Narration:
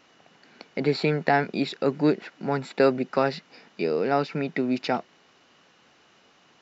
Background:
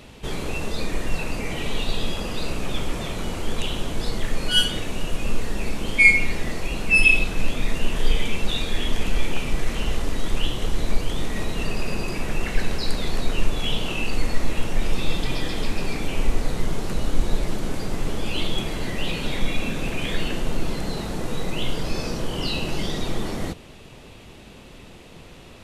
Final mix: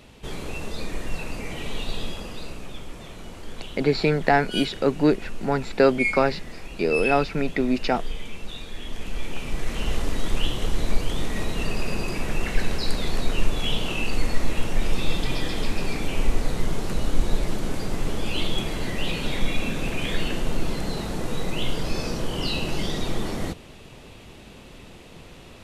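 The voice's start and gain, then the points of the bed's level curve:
3.00 s, +2.5 dB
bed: 0:02.00 −4.5 dB
0:02.80 −11.5 dB
0:08.75 −11.5 dB
0:09.96 −0.5 dB

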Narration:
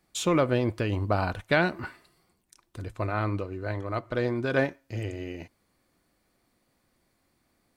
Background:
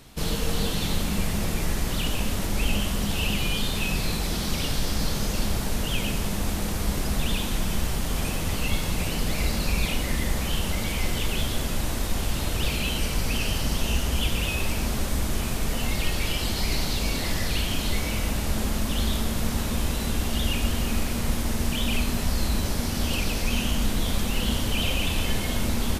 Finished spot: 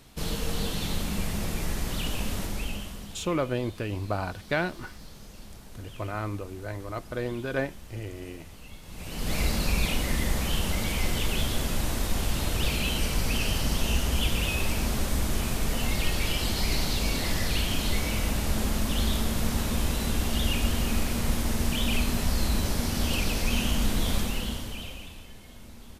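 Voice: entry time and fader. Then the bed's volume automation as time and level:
3.00 s, −4.0 dB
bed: 0:02.40 −4 dB
0:03.36 −20 dB
0:08.82 −20 dB
0:09.34 −1 dB
0:24.17 −1 dB
0:25.29 −21.5 dB

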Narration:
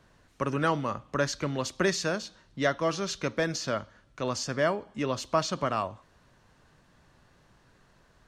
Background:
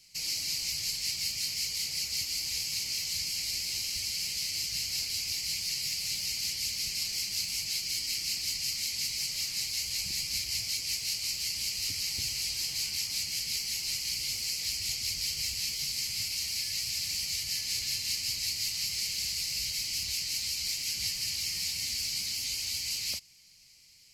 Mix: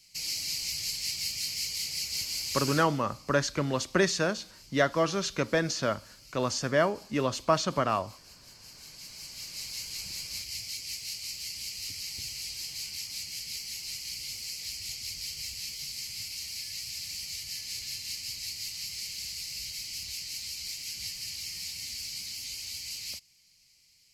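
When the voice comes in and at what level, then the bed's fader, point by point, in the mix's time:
2.15 s, +1.5 dB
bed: 0:02.71 −0.5 dB
0:03.00 −21 dB
0:08.44 −21 dB
0:09.68 −5 dB

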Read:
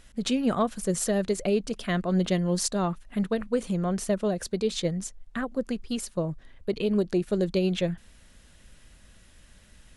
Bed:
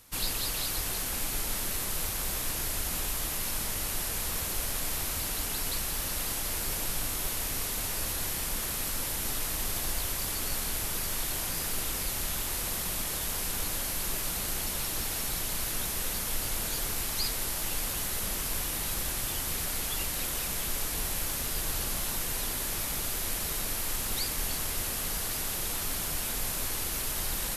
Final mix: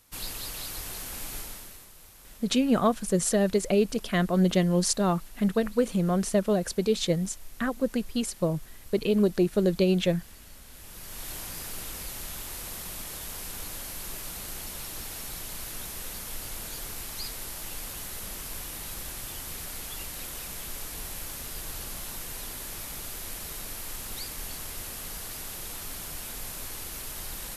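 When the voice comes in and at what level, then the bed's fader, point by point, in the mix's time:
2.25 s, +2.0 dB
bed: 0:01.38 −5 dB
0:01.93 −19.5 dB
0:10.65 −19.5 dB
0:11.29 −5.5 dB

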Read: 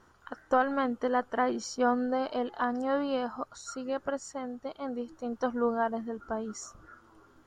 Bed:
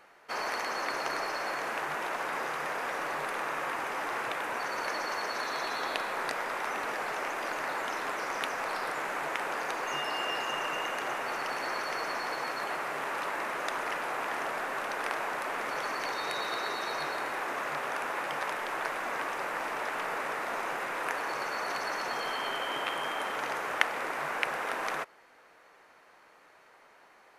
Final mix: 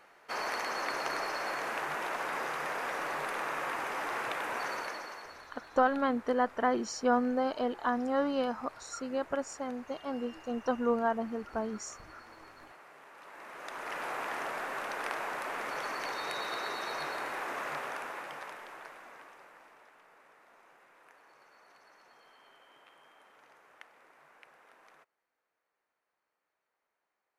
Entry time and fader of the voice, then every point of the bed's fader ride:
5.25 s, −0.5 dB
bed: 0:04.70 −1.5 dB
0:05.54 −20 dB
0:13.14 −20 dB
0:14.03 −3 dB
0:17.74 −3 dB
0:20.02 −27 dB

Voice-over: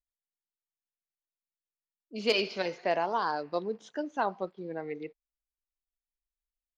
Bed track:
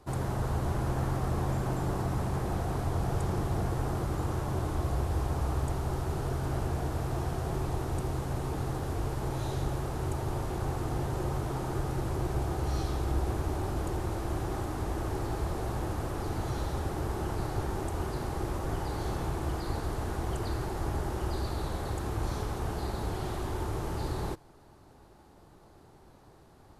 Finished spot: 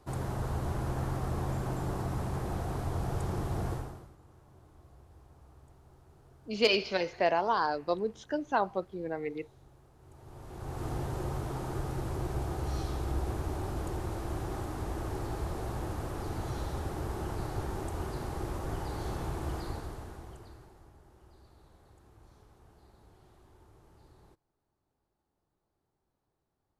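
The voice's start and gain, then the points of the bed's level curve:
4.35 s, +1.5 dB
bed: 0:03.73 −3 dB
0:04.17 −26.5 dB
0:09.97 −26.5 dB
0:10.85 −3 dB
0:19.61 −3 dB
0:20.95 −26 dB

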